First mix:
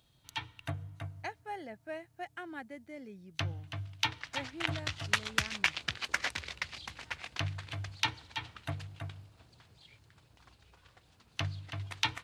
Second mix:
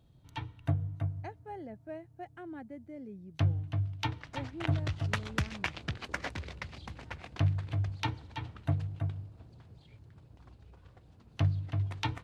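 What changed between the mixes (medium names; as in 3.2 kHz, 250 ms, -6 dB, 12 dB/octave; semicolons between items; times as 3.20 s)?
speech -4.5 dB; master: add tilt shelf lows +9.5 dB, about 900 Hz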